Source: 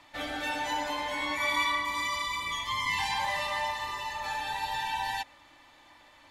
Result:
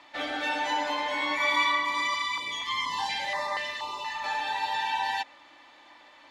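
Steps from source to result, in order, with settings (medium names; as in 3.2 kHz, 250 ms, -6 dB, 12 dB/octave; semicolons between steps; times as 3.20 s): three-band isolator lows -17 dB, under 210 Hz, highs -15 dB, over 6.4 kHz; 2.14–4.24 s: step-sequenced notch 4.2 Hz 510–2900 Hz; trim +3.5 dB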